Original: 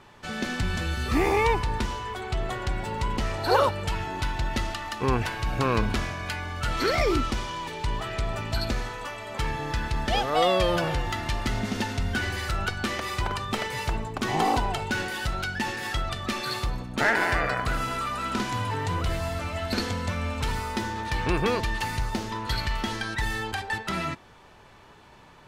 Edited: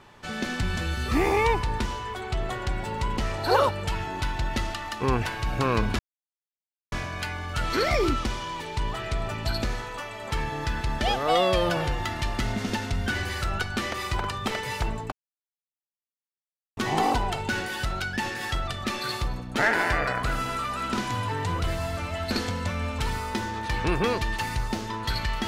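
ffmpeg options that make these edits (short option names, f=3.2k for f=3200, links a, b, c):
-filter_complex "[0:a]asplit=3[a][b][c];[a]atrim=end=5.99,asetpts=PTS-STARTPTS,afade=t=out:st=5.986:d=0.004:c=hsin,apad=pad_dur=0.93[d];[b]atrim=start=5.99:end=14.19,asetpts=PTS-STARTPTS,afade=t=in:d=0.004:c=hsin,afade=t=out:st=8.196:d=0.004:c=hsin,apad=pad_dur=1.65[e];[c]atrim=start=14.19,asetpts=PTS-STARTPTS,afade=t=in:d=0.004:c=hsin[f];[d][e][f]concat=n=3:v=0:a=1"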